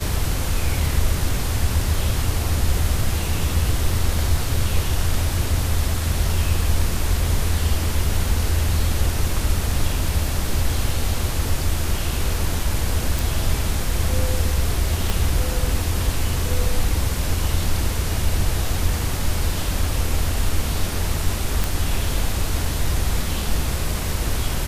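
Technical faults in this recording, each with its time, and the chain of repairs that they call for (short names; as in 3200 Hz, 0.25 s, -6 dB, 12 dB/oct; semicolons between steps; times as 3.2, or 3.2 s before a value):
13.19 pop
15.1 pop
21.64 pop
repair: de-click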